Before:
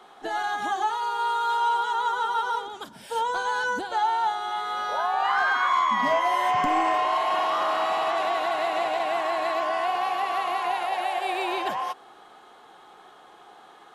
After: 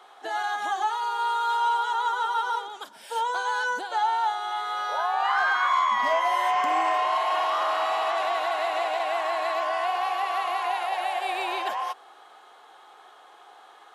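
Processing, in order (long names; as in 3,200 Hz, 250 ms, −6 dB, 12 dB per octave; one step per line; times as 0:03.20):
high-pass filter 500 Hz 12 dB per octave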